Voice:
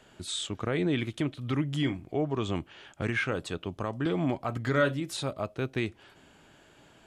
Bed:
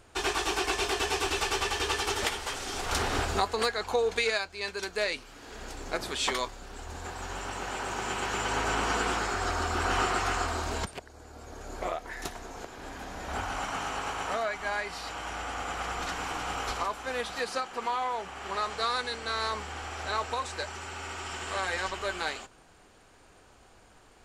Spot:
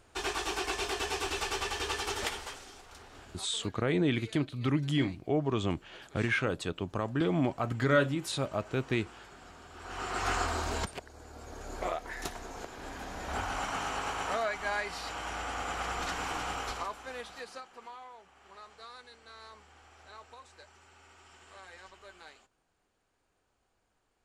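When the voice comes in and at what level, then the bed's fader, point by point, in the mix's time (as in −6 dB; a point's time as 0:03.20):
3.15 s, 0.0 dB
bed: 0:02.39 −4.5 dB
0:02.94 −23 dB
0:09.68 −23 dB
0:10.29 −1 dB
0:16.40 −1 dB
0:18.21 −19.5 dB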